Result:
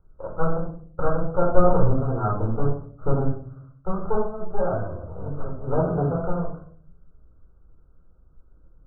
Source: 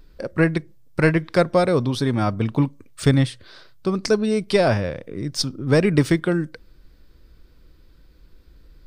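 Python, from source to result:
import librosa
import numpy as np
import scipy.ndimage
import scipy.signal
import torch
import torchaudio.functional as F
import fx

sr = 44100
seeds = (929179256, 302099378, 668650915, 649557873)

p1 = fx.lower_of_two(x, sr, delay_ms=1.6)
p2 = fx.low_shelf(p1, sr, hz=180.0, db=11.0, at=(1.53, 1.94))
p3 = fx.highpass(p2, sr, hz=55.0, slope=12, at=(5.73, 6.2))
p4 = np.where(np.abs(p3) >= 10.0 ** (-31.0 / 20.0), p3, 0.0)
p5 = p3 + F.gain(torch.from_numpy(p4), -5.0).numpy()
p6 = fx.brickwall_lowpass(p5, sr, high_hz=1600.0)
p7 = fx.room_shoebox(p6, sr, seeds[0], volume_m3=640.0, walls='furnished', distance_m=4.3)
p8 = fx.detune_double(p7, sr, cents=fx.line((4.26, 34.0), (5.01, 16.0)), at=(4.26, 5.01), fade=0.02)
y = F.gain(torch.from_numpy(p8), -12.5).numpy()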